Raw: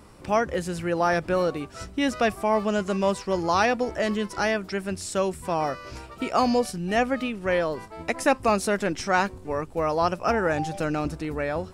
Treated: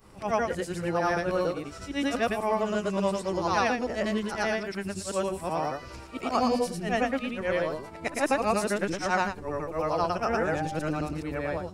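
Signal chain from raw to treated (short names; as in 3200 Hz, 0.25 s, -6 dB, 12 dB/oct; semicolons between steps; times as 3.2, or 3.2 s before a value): short-time reversal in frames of 0.236 s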